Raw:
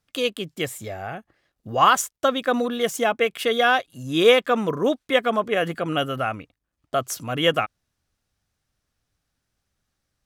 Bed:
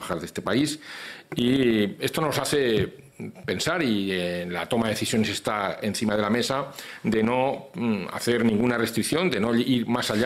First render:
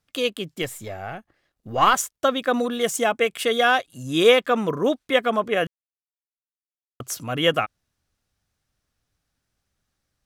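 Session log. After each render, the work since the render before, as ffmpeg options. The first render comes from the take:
ffmpeg -i in.wav -filter_complex "[0:a]asettb=1/sr,asplit=3[link_01][link_02][link_03];[link_01]atrim=end=0.624[link_04];[link_02]atrim=start=0.62:end=1.94,asetpts=PTS-STARTPTS,afade=type=in:duration=0.004:curve=qsin,afade=type=out:start_time=1.316:duration=0.004:curve=qsin,aeval=exprs='if(lt(val(0),0),0.708*val(0),val(0))':channel_layout=same[link_05];[link_03]atrim=start=1.936[link_06];[link_04][link_05]acrossfade=duration=0.004:curve1=hsin:curve2=qsin[link_07];[link_07][link_06]acrossfade=duration=0.004:curve1=qsin:curve2=hsin,asettb=1/sr,asplit=3[link_08][link_09][link_10];[link_08]atrim=end=2.604[link_11];[link_09]atrim=start=2.6:end=4.28,asetpts=PTS-STARTPTS,afade=type=in:duration=0.004:curve=qsin,afade=type=out:start_time=1.676:duration=0.004:curve=qsin,equalizer=frequency=8200:width=1.5:gain=6[link_12];[link_10]atrim=start=4.276[link_13];[link_11][link_12]acrossfade=duration=0.004:curve1=hsin:curve2=qsin[link_14];[link_14][link_13]acrossfade=duration=0.004:curve1=qsin:curve2=hsin,asplit=3[link_15][link_16][link_17];[link_15]atrim=end=5.67,asetpts=PTS-STARTPTS,afade=type=out:start_time=5.666:duration=0.004:curve=hsin[link_18];[link_16]atrim=start=5.67:end=7,asetpts=PTS-STARTPTS,volume=0[link_19];[link_17]atrim=start=7,asetpts=PTS-STARTPTS,afade=type=in:duration=0.004:curve=hsin[link_20];[link_18][link_19][link_20]concat=n=3:v=0:a=1" out.wav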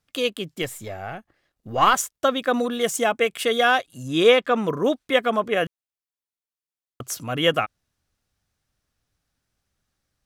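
ffmpeg -i in.wav -filter_complex "[0:a]asettb=1/sr,asplit=3[link_01][link_02][link_03];[link_01]atrim=end=4.084[link_04];[link_02]atrim=start=4.08:end=4.64,asetpts=PTS-STARTPTS,afade=type=in:duration=0.004:curve=qsin,afade=type=out:start_time=0.556:duration=0.004:curve=qsin,highshelf=frequency=9200:gain=-11[link_05];[link_03]atrim=start=4.636[link_06];[link_04][link_05]acrossfade=duration=0.004:curve1=hsin:curve2=qsin[link_07];[link_07][link_06]acrossfade=duration=0.004:curve1=qsin:curve2=hsin" out.wav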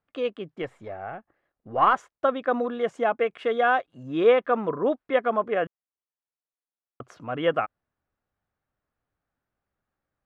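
ffmpeg -i in.wav -af "lowpass=1400,lowshelf=frequency=240:gain=-10.5" out.wav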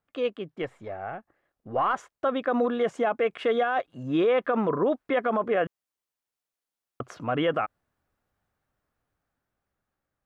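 ffmpeg -i in.wav -af "dynaudnorm=framelen=590:gausssize=7:maxgain=6dB,alimiter=limit=-16.5dB:level=0:latency=1:release=37" out.wav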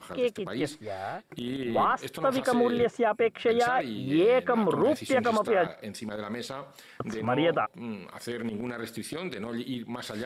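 ffmpeg -i in.wav -i bed.wav -filter_complex "[1:a]volume=-12dB[link_01];[0:a][link_01]amix=inputs=2:normalize=0" out.wav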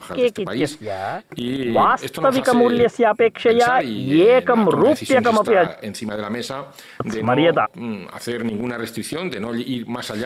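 ffmpeg -i in.wav -af "volume=9.5dB" out.wav

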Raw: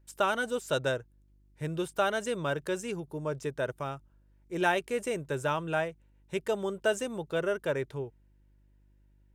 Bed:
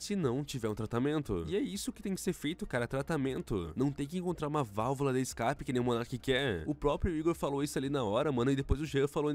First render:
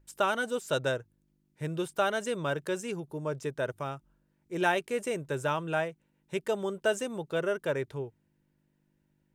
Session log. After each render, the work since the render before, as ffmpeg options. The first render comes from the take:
ffmpeg -i in.wav -af "bandreject=frequency=50:width_type=h:width=4,bandreject=frequency=100:width_type=h:width=4" out.wav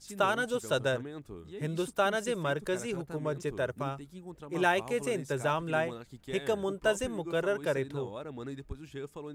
ffmpeg -i in.wav -i bed.wav -filter_complex "[1:a]volume=-10.5dB[link_01];[0:a][link_01]amix=inputs=2:normalize=0" out.wav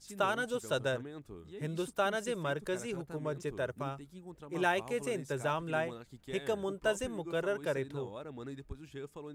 ffmpeg -i in.wav -af "volume=-3.5dB" out.wav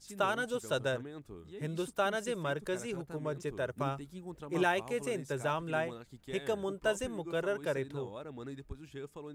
ffmpeg -i in.wav -filter_complex "[0:a]asplit=3[link_01][link_02][link_03];[link_01]atrim=end=3.782[link_04];[link_02]atrim=start=3.778:end=4.632,asetpts=PTS-STARTPTS,volume=4dB[link_05];[link_03]atrim=start=4.628[link_06];[link_04][link_05]acrossfade=duration=0.004:curve1=hsin:curve2=hsin[link_07];[link_07][link_06]acrossfade=duration=0.004:curve1=hsin:curve2=hsin" out.wav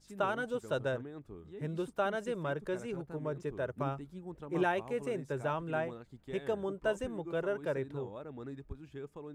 ffmpeg -i in.wav -af "highshelf=frequency=2800:gain=-12" out.wav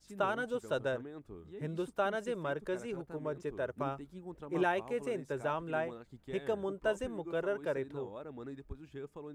ffmpeg -i in.wav -af "adynamicequalizer=threshold=0.00178:dfrequency=130:dqfactor=1.5:tfrequency=130:tqfactor=1.5:attack=5:release=100:ratio=0.375:range=3:mode=cutabove:tftype=bell" out.wav

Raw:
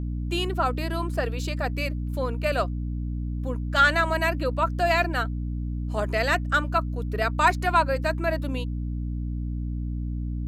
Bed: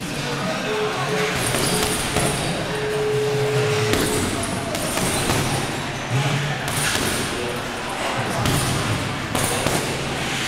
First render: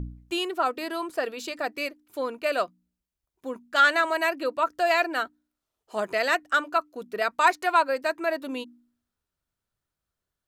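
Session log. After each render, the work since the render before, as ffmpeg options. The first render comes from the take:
ffmpeg -i in.wav -af "bandreject=frequency=60:width_type=h:width=4,bandreject=frequency=120:width_type=h:width=4,bandreject=frequency=180:width_type=h:width=4,bandreject=frequency=240:width_type=h:width=4,bandreject=frequency=300:width_type=h:width=4" out.wav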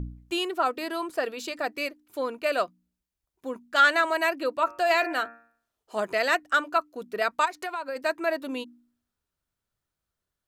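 ffmpeg -i in.wav -filter_complex "[0:a]asettb=1/sr,asplit=3[link_01][link_02][link_03];[link_01]atrim=end=4.584[link_04];[link_02]atrim=start=4.58:end=5.97,asetpts=PTS-STARTPTS,afade=type=in:duration=0.004:curve=qsin,afade=type=out:start_time=1.386:duration=0.004:curve=qsin,bandreject=frequency=116:width_type=h:width=4,bandreject=frequency=232:width_type=h:width=4,bandreject=frequency=348:width_type=h:width=4,bandreject=frequency=464:width_type=h:width=4,bandreject=frequency=580:width_type=h:width=4,bandreject=frequency=696:width_type=h:width=4,bandreject=frequency=812:width_type=h:width=4,bandreject=frequency=928:width_type=h:width=4,bandreject=frequency=1044:width_type=h:width=4,bandreject=frequency=1160:width_type=h:width=4,bandreject=frequency=1276:width_type=h:width=4,bandreject=frequency=1392:width_type=h:width=4,bandreject=frequency=1508:width_type=h:width=4,bandreject=frequency=1624:width_type=h:width=4,bandreject=frequency=1740:width_type=h:width=4,bandreject=frequency=1856:width_type=h:width=4,bandreject=frequency=1972:width_type=h:width=4,bandreject=frequency=2088:width_type=h:width=4,bandreject=frequency=2204:width_type=h:width=4,bandreject=frequency=2320:width_type=h:width=4,bandreject=frequency=2436:width_type=h:width=4,bandreject=frequency=2552:width_type=h:width=4,bandreject=frequency=2668:width_type=h:width=4[link_05];[link_03]atrim=start=5.966[link_06];[link_04][link_05]acrossfade=duration=0.004:curve1=hsin:curve2=qsin[link_07];[link_07][link_06]acrossfade=duration=0.004:curve1=qsin:curve2=hsin,asplit=3[link_08][link_09][link_10];[link_08]afade=type=out:start_time=7.44:duration=0.02[link_11];[link_09]acompressor=threshold=-29dB:ratio=6:attack=3.2:release=140:knee=1:detection=peak,afade=type=in:start_time=7.44:duration=0.02,afade=type=out:start_time=7.95:duration=0.02[link_12];[link_10]afade=type=in:start_time=7.95:duration=0.02[link_13];[link_11][link_12][link_13]amix=inputs=3:normalize=0" out.wav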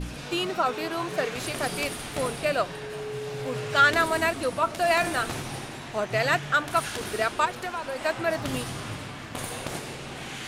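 ffmpeg -i in.wav -i bed.wav -filter_complex "[1:a]volume=-13dB[link_01];[0:a][link_01]amix=inputs=2:normalize=0" out.wav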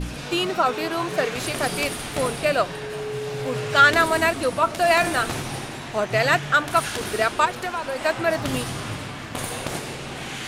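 ffmpeg -i in.wav -af "volume=4.5dB" out.wav

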